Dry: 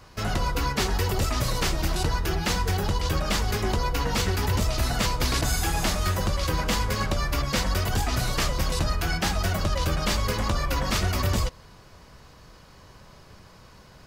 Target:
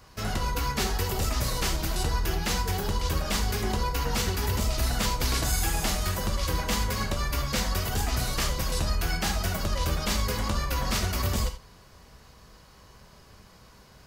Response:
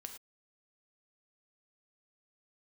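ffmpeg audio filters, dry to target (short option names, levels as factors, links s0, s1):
-filter_complex "[0:a]highshelf=f=7500:g=6.5[s0];[1:a]atrim=start_sample=2205,afade=t=out:st=0.14:d=0.01,atrim=end_sample=6615[s1];[s0][s1]afir=irnorm=-1:irlink=0,volume=1.19"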